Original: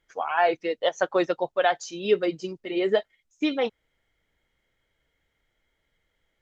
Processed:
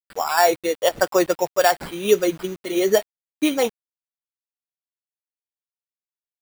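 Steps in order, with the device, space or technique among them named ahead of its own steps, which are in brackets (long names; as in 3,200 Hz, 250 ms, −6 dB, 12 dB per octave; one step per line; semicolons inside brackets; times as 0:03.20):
early 8-bit sampler (sample-rate reduction 6,300 Hz, jitter 0%; bit reduction 8 bits)
level +5 dB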